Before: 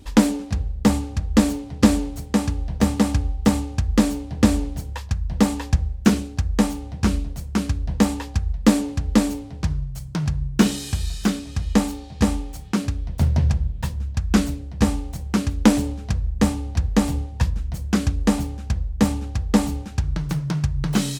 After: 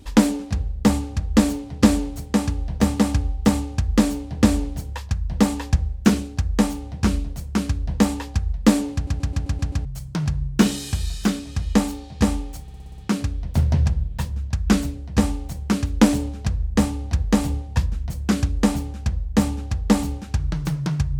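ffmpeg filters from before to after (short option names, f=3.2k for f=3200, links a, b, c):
-filter_complex "[0:a]asplit=14[a][b][c][d][e][f][g][h][i][j][k][l][m][n];[a]atrim=end=9.072[o];[b]atrim=start=8.938:end=9.072[p];[c]atrim=start=8.938:end=9.072[q];[d]atrim=start=8.938:end=9.072[r];[e]atrim=start=8.938:end=9.072[s];[f]atrim=start=8.938:end=9.072[t];[g]atrim=start=8.938:end=9.072[u];[h]atrim=start=9.848:end=12.682[v];[i]atrim=start=12.618:end=12.682[w];[j]atrim=start=12.618:end=12.682[x];[k]atrim=start=12.618:end=12.682[y];[l]atrim=start=12.618:end=12.682[z];[m]atrim=start=12.618:end=12.682[aa];[n]atrim=start=12.618[ab];[o][p]acrossfade=d=0.004:c1=hsin:c2=hsin[ac];[ac][q]acrossfade=d=0.004:c1=hsin:c2=hsin[ad];[ad][r]acrossfade=d=0.004:c1=hsin:c2=hsin[ae];[ae][s]acrossfade=d=0.004:c1=hsin:c2=hsin[af];[af][t]acrossfade=d=0.004:c1=hsin:c2=hsin[ag];[ag][u]acrossfade=d=0.004:c1=hsin:c2=hsin[ah];[ah][v]acrossfade=d=0.004:c1=hsin:c2=hsin[ai];[ai][w]acrossfade=d=0.004:c1=hsin:c2=hsin[aj];[aj][x]acrossfade=d=0.004:c1=hsin:c2=hsin[ak];[ak][y]acrossfade=d=0.004:c1=hsin:c2=hsin[al];[al][z]acrossfade=d=0.004:c1=hsin:c2=hsin[am];[am][aa]acrossfade=d=0.004:c1=hsin:c2=hsin[an];[an][ab]acrossfade=d=0.004:c1=hsin:c2=hsin"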